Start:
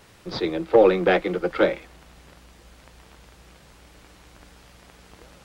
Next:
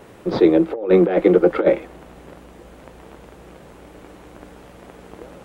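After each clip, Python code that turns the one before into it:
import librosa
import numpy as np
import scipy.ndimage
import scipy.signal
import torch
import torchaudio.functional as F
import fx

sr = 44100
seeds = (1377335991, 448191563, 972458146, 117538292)

y = fx.peak_eq(x, sr, hz=4900.0, db=-6.5, octaves=0.84)
y = fx.over_compress(y, sr, threshold_db=-22.0, ratio=-0.5)
y = fx.peak_eq(y, sr, hz=390.0, db=12.5, octaves=2.8)
y = y * librosa.db_to_amplitude(-2.5)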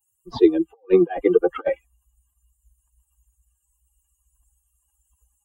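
y = fx.bin_expand(x, sr, power=3.0)
y = y + 0.5 * np.pad(y, (int(2.5 * sr / 1000.0), 0))[:len(y)]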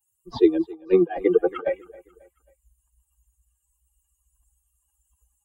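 y = fx.echo_feedback(x, sr, ms=270, feedback_pct=42, wet_db=-22.0)
y = y * librosa.db_to_amplitude(-2.0)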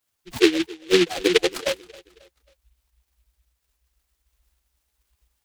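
y = fx.noise_mod_delay(x, sr, seeds[0], noise_hz=2700.0, depth_ms=0.18)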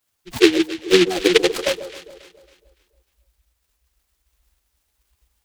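y = fx.echo_alternate(x, sr, ms=141, hz=910.0, feedback_pct=60, wet_db=-12.0)
y = y * librosa.db_to_amplitude(3.5)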